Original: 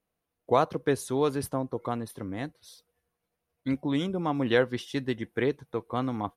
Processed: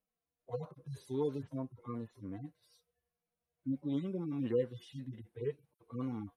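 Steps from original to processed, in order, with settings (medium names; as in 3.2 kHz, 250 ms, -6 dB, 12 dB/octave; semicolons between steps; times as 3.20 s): harmonic-percussive separation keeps harmonic; trim -7 dB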